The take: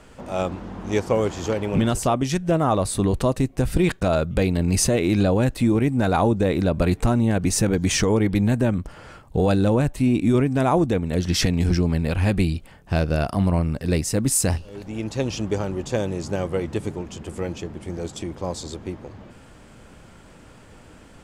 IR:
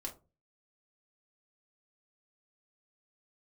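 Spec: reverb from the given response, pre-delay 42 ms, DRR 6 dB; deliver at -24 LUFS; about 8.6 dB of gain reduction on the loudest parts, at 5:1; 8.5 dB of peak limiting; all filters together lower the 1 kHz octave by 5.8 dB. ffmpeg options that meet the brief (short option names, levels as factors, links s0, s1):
-filter_complex "[0:a]equalizer=f=1000:t=o:g=-8.5,acompressor=threshold=0.0562:ratio=5,alimiter=limit=0.0794:level=0:latency=1,asplit=2[s0][s1];[1:a]atrim=start_sample=2205,adelay=42[s2];[s1][s2]afir=irnorm=-1:irlink=0,volume=0.596[s3];[s0][s3]amix=inputs=2:normalize=0,volume=2.24"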